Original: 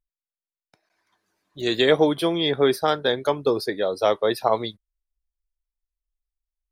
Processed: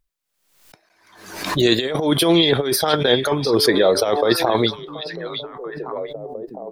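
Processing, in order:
0:01.77–0:02.90: high-shelf EQ 5,100 Hz +5.5 dB
0:03.54–0:04.27: hum removal 145.9 Hz, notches 7
compressor whose output falls as the input rises −23 dBFS, ratio −0.5
echo through a band-pass that steps 708 ms, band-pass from 3,500 Hz, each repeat −1.4 octaves, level −6 dB
background raised ahead of every attack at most 70 dB per second
level +7 dB

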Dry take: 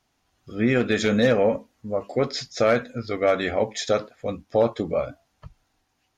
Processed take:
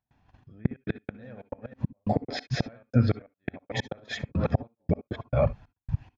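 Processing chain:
delay that plays each chunk backwards 248 ms, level −6 dB
dynamic equaliser 150 Hz, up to −4 dB, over −35 dBFS, Q 0.86
in parallel at +3 dB: downward compressor 8 to 1, threshold −32 dBFS, peak gain reduction 17 dB
on the sum: noise gate −55 dBFS, range −58 dB
gate pattern ".xxx..x.x.xxx" 138 BPM −60 dB
gate with flip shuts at −13 dBFS, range −37 dB
convolution reverb, pre-delay 54 ms, DRR 20 dB
brickwall limiter −18 dBFS, peak gain reduction 7.5 dB
upward compression, threshold −37 dBFS
low-pass filter 2,400 Hz 12 dB per octave
parametric band 110 Hz +9.5 dB 2.5 octaves
comb filter 1.2 ms, depth 36%
level +3 dB

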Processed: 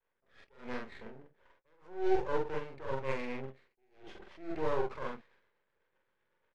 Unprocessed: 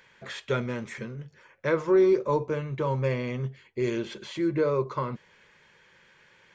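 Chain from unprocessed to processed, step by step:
running median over 9 samples
high-pass filter 350 Hz 12 dB per octave
low-pass that shuts in the quiet parts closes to 1,100 Hz, open at −23.5 dBFS
downward expander −58 dBFS
rotating-speaker cabinet horn 1.1 Hz, later 8 Hz, at 0:01.95
half-wave rectification
high-frequency loss of the air 54 metres
double-tracking delay 45 ms −2.5 dB
level that may rise only so fast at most 140 dB per second

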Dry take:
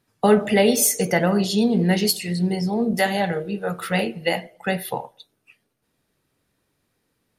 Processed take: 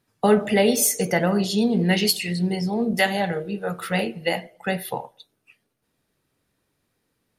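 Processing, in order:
0:01.81–0:03.06: dynamic equaliser 2,700 Hz, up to +7 dB, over −40 dBFS, Q 1.2
level −1.5 dB

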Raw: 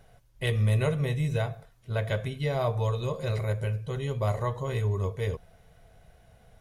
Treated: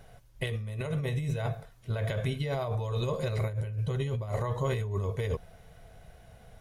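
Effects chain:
0:03.49–0:04.29: parametric band 92 Hz +5.5 dB 1.5 octaves
compressor whose output falls as the input rises −31 dBFS, ratio −1

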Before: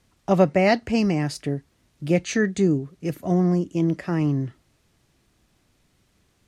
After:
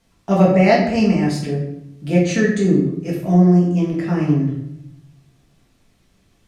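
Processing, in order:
rectangular room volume 190 cubic metres, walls mixed, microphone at 1.6 metres
level −1.5 dB

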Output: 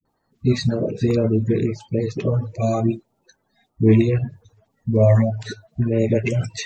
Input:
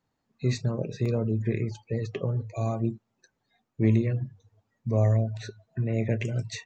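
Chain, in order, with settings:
spectral magnitudes quantised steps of 30 dB
all-pass dispersion highs, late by 55 ms, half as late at 350 Hz
level +8.5 dB

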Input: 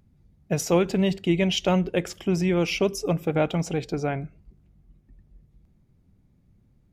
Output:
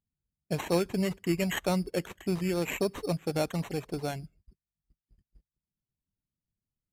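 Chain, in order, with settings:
one scale factor per block 7 bits
noise gate −49 dBFS, range −23 dB
reverb reduction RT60 0.51 s
decimation without filtering 9×
level −6 dB
Ogg Vorbis 128 kbit/s 32,000 Hz

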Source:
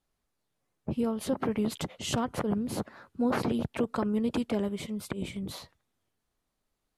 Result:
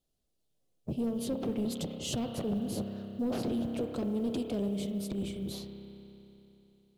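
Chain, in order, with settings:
spring reverb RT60 3.3 s, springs 30 ms, chirp 45 ms, DRR 6.5 dB
in parallel at −10.5 dB: sine wavefolder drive 9 dB, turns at −16 dBFS
on the sum: log-companded quantiser 8 bits
flat-topped bell 1,400 Hz −11.5 dB
level −8.5 dB

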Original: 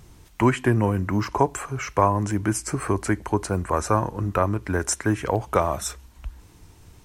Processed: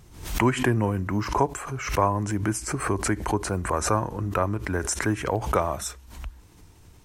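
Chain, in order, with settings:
background raised ahead of every attack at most 91 dB per second
level −3 dB

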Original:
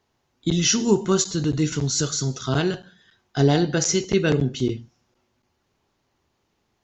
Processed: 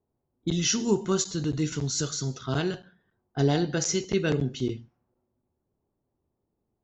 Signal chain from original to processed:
low-pass that shuts in the quiet parts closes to 570 Hz, open at −19.5 dBFS
level −5.5 dB

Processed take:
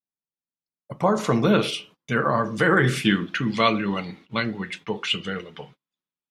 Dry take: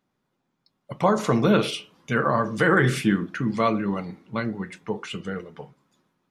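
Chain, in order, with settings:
noise gate −48 dBFS, range −30 dB
parametric band 3,200 Hz −7.5 dB 1.4 octaves, from 0:01.15 +2 dB, from 0:03.05 +14 dB

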